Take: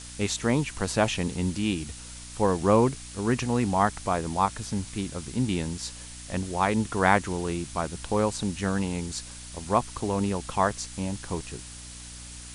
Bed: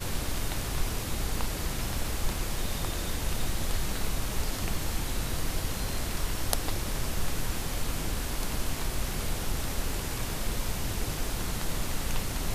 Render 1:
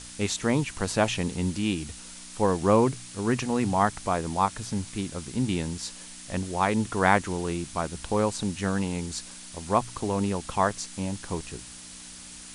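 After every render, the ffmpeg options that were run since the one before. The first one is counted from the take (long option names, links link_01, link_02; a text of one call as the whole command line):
ffmpeg -i in.wav -af "bandreject=frequency=60:width_type=h:width=4,bandreject=frequency=120:width_type=h:width=4" out.wav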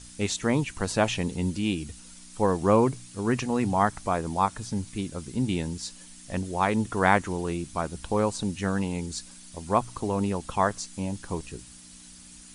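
ffmpeg -i in.wav -af "afftdn=noise_reduction=8:noise_floor=-44" out.wav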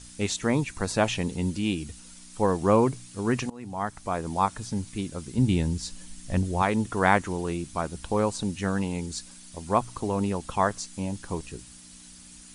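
ffmpeg -i in.wav -filter_complex "[0:a]asettb=1/sr,asplit=3[link_01][link_02][link_03];[link_01]atrim=end=0.494[link_04];[link_02]atrim=start=0.49:end=0.97,asetpts=PTS-STARTPTS,afade=type=in:duration=0.004:curve=qsin,afade=type=out:start_time=0.476:duration=0.004:curve=qsin,bandreject=frequency=3000:width=8.7[link_05];[link_03]atrim=start=0.966[link_06];[link_04][link_05]acrossfade=duration=0.004:curve1=hsin:curve2=qsin[link_07];[link_07][link_06]acrossfade=duration=0.004:curve1=qsin:curve2=hsin,asettb=1/sr,asplit=3[link_08][link_09][link_10];[link_08]atrim=end=5.384[link_11];[link_09]atrim=start=5.38:end=6.62,asetpts=PTS-STARTPTS,afade=type=in:duration=0.004:curve=qsin,afade=type=out:start_time=1.236:duration=0.004:curve=qsin,lowshelf=frequency=140:gain=12[link_12];[link_10]atrim=start=6.616[link_13];[link_11][link_12]acrossfade=duration=0.004:curve1=hsin:curve2=qsin[link_14];[link_14][link_13]acrossfade=duration=0.004:curve1=qsin:curve2=hsin,asplit=2[link_15][link_16];[link_15]atrim=end=3.5,asetpts=PTS-STARTPTS,afade=type=out:start_time=3.496:duration=0.004:curve=hsin:silence=0.0707946[link_17];[link_16]atrim=start=3.5,asetpts=PTS-STARTPTS,afade=type=in:duration=0.87:silence=0.0707946[link_18];[link_17][link_18]concat=n=2:v=0:a=1" out.wav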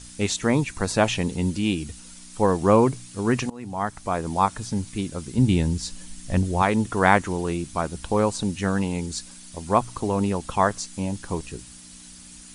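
ffmpeg -i in.wav -af "volume=3.5dB" out.wav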